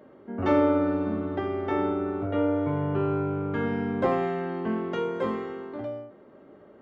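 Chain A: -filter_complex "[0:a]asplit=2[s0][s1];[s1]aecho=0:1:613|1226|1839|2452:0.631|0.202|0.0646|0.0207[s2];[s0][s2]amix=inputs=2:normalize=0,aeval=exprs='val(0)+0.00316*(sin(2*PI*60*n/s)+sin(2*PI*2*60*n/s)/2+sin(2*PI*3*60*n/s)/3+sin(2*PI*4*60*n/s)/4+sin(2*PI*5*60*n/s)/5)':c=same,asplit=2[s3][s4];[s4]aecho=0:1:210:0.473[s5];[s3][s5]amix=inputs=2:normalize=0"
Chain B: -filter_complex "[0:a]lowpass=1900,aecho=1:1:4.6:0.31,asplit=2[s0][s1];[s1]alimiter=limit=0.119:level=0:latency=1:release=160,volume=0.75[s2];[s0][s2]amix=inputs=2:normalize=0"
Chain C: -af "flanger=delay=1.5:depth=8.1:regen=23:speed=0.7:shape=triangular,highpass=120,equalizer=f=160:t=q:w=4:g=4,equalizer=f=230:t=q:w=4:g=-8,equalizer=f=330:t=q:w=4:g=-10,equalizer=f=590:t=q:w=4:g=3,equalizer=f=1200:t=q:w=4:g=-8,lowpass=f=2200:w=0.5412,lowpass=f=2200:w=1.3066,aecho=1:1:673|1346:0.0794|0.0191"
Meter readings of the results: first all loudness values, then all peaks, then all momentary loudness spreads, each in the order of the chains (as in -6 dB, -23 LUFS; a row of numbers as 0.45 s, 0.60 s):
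-25.5 LUFS, -23.5 LUFS, -33.5 LUFS; -10.5 dBFS, -8.5 dBFS, -16.0 dBFS; 9 LU, 10 LU, 10 LU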